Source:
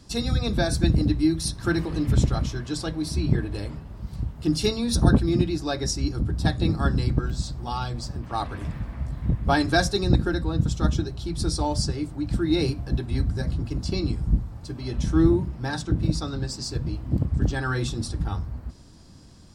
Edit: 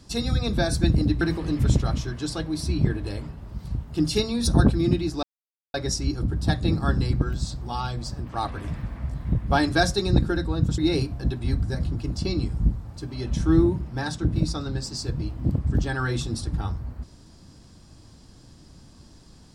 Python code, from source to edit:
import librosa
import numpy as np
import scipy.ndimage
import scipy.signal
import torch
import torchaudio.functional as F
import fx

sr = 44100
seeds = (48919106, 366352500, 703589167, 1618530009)

y = fx.edit(x, sr, fx.cut(start_s=1.21, length_s=0.48),
    fx.insert_silence(at_s=5.71, length_s=0.51),
    fx.cut(start_s=10.75, length_s=1.7), tone=tone)